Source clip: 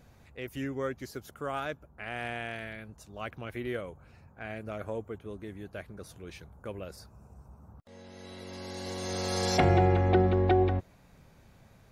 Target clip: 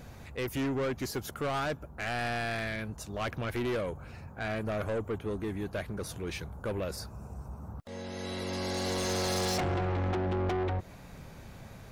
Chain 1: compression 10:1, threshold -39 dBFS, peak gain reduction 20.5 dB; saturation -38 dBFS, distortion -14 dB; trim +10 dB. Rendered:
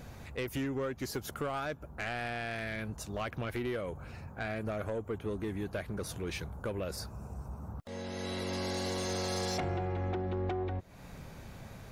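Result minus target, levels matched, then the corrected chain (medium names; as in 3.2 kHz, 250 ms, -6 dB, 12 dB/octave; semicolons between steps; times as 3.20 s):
compression: peak gain reduction +9 dB
compression 10:1, threshold -29 dBFS, peak gain reduction 11.5 dB; saturation -38 dBFS, distortion -7 dB; trim +10 dB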